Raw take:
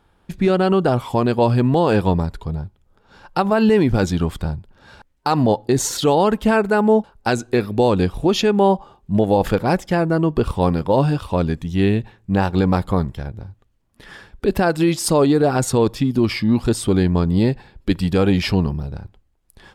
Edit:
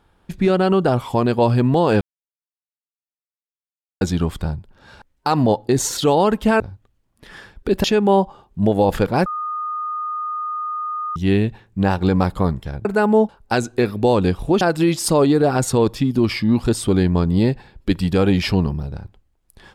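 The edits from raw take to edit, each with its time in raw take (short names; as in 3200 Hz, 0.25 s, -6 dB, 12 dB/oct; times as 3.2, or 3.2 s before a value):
2.01–4.01 mute
6.6–8.36 swap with 13.37–14.61
9.78–11.68 bleep 1230 Hz -22.5 dBFS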